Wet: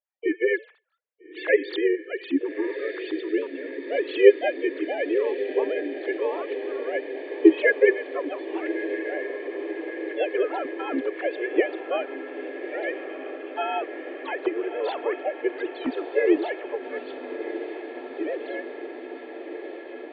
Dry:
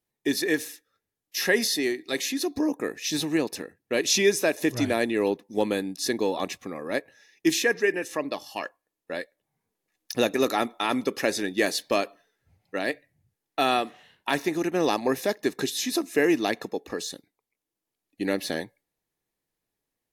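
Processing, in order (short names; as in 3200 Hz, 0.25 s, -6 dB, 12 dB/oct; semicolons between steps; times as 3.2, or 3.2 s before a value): sine-wave speech; diffused feedback echo 1.287 s, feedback 76%, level -10.5 dB; harmoniser +3 st -17 dB, +4 st -7 dB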